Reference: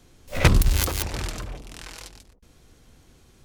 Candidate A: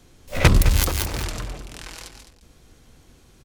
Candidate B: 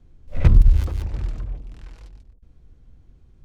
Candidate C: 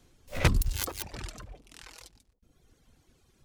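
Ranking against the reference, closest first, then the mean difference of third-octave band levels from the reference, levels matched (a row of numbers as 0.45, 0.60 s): A, C, B; 1.5, 4.5, 10.5 dB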